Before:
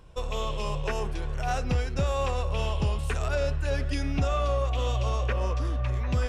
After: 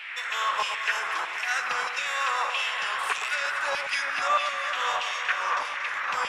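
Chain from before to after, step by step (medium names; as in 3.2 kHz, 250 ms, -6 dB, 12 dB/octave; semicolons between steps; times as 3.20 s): band noise 130–2000 Hz -40 dBFS; LFO high-pass saw down 1.6 Hz 940–2800 Hz; echo whose repeats swap between lows and highs 117 ms, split 1.3 kHz, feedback 80%, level -7 dB; trim +4.5 dB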